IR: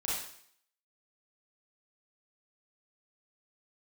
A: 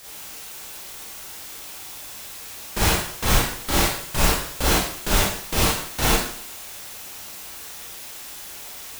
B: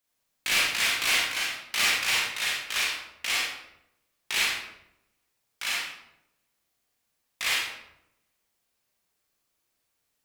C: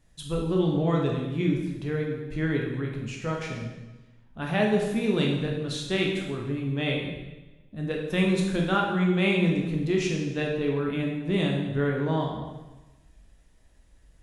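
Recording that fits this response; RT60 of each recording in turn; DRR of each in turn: A; 0.60, 0.85, 1.1 seconds; −7.0, −5.0, −1.0 decibels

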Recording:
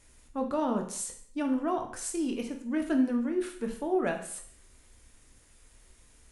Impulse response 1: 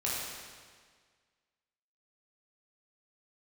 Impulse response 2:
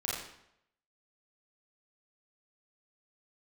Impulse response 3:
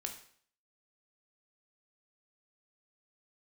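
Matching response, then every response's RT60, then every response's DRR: 3; 1.7, 0.75, 0.55 seconds; −7.0, −6.5, 3.5 decibels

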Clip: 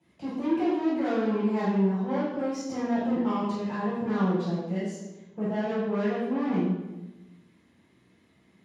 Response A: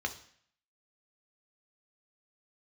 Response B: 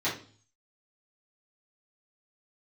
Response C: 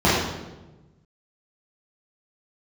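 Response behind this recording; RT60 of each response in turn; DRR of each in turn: C; 0.60, 0.45, 1.1 seconds; 4.5, −11.0, −9.5 decibels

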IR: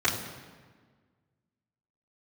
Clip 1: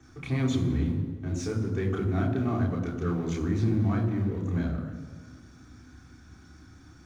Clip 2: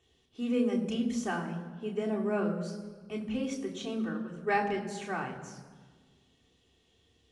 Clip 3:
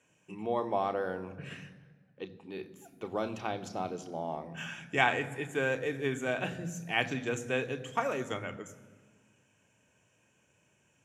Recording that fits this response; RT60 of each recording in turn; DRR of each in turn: 1; 1.5, 1.5, 1.5 seconds; −10.5, −2.0, 7.5 decibels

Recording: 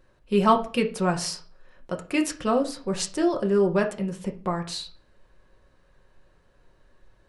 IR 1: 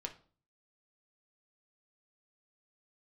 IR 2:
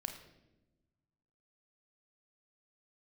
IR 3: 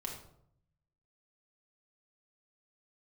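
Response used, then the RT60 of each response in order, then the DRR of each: 1; 0.45 s, non-exponential decay, 0.70 s; 2.5, 4.0, −1.5 decibels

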